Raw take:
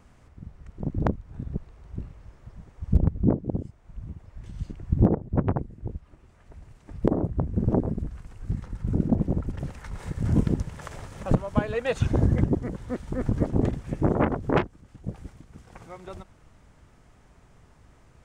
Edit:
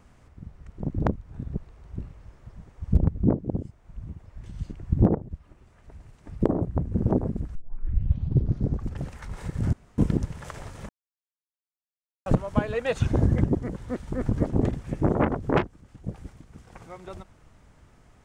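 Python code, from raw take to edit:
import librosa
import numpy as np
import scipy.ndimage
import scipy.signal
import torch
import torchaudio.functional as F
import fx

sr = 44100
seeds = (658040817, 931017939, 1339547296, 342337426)

y = fx.edit(x, sr, fx.cut(start_s=5.31, length_s=0.62),
    fx.tape_start(start_s=8.17, length_s=1.45),
    fx.insert_room_tone(at_s=10.35, length_s=0.25),
    fx.insert_silence(at_s=11.26, length_s=1.37), tone=tone)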